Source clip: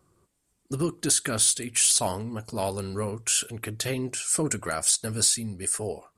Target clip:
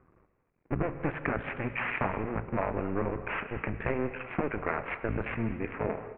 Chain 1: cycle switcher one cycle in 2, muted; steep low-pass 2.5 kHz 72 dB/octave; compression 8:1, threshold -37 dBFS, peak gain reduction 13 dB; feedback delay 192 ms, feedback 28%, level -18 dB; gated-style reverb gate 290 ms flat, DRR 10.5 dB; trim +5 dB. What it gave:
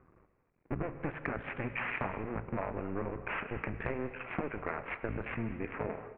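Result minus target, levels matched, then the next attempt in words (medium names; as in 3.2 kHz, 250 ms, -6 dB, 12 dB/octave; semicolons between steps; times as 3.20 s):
compression: peak gain reduction +6 dB
cycle switcher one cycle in 2, muted; steep low-pass 2.5 kHz 72 dB/octave; compression 8:1, threshold -30 dBFS, peak gain reduction 7 dB; feedback delay 192 ms, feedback 28%, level -18 dB; gated-style reverb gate 290 ms flat, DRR 10.5 dB; trim +5 dB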